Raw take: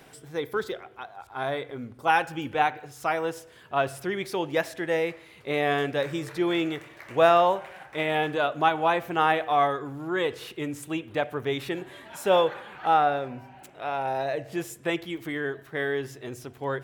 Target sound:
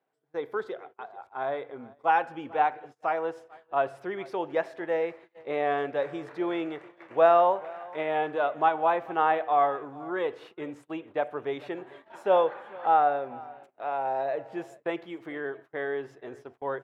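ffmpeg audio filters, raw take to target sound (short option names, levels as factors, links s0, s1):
-af "bandpass=f=720:t=q:w=0.83:csg=0,aecho=1:1:441:0.0841,agate=range=0.0562:threshold=0.00447:ratio=16:detection=peak"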